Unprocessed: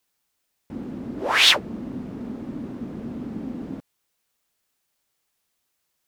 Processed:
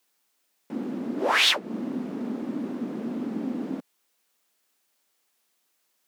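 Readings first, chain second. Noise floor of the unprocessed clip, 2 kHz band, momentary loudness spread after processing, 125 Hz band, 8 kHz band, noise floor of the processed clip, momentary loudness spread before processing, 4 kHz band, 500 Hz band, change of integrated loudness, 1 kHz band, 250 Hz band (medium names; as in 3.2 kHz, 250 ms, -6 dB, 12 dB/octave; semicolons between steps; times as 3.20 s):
-76 dBFS, -3.5 dB, 15 LU, -4.5 dB, -5.0 dB, -73 dBFS, 21 LU, -5.0 dB, +1.0 dB, -4.0 dB, -1.0 dB, +2.0 dB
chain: high-pass 200 Hz 24 dB/octave; compression 2.5:1, threshold -24 dBFS, peak gain reduction 9.5 dB; trim +3 dB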